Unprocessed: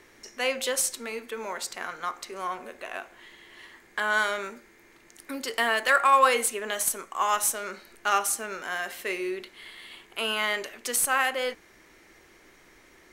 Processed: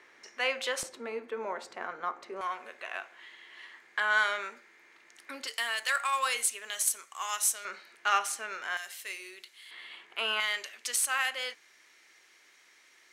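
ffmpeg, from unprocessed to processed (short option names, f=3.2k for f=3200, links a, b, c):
-af "asetnsamples=n=441:p=0,asendcmd='0.83 bandpass f 590;2.41 bandpass f 2100;5.47 bandpass f 6100;7.65 bandpass f 2300;8.77 bandpass f 7600;9.71 bandpass f 1700;10.4 bandpass f 4400',bandpass=f=1.6k:t=q:w=0.57:csg=0"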